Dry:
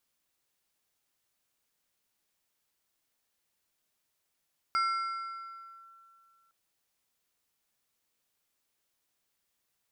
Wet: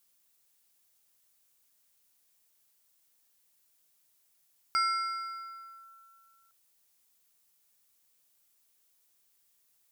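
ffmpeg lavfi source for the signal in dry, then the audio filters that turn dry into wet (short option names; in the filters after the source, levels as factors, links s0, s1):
-f lavfi -i "aevalsrc='0.0631*pow(10,-3*t/2.43)*sin(2*PI*1350*t+0.53*clip(1-t/1.13,0,1)*sin(2*PI*2.58*1350*t))':d=1.76:s=44100"
-af "highshelf=f=5400:g=12"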